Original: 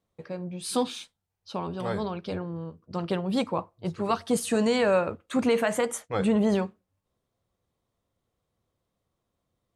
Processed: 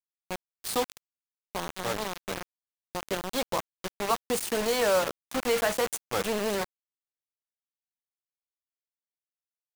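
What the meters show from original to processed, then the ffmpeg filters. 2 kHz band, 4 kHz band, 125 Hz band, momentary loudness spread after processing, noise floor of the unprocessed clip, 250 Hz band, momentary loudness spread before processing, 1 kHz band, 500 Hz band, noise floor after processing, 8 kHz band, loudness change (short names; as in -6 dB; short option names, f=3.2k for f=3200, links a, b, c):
+1.5 dB, +3.0 dB, -10.0 dB, 14 LU, -82 dBFS, -10.0 dB, 13 LU, 0.0 dB, -2.0 dB, under -85 dBFS, +3.0 dB, -2.0 dB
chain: -filter_complex "[0:a]adynamicequalizer=threshold=0.00355:dfrequency=2500:dqfactor=2.1:tfrequency=2500:tqfactor=2.1:attack=5:release=100:ratio=0.375:range=2.5:mode=cutabove:tftype=bell,acrossover=split=390|1600[a][b][c];[a]acompressor=threshold=-39dB:ratio=6[d];[d][b][c]amix=inputs=3:normalize=0,acrusher=bits=4:mix=0:aa=0.000001"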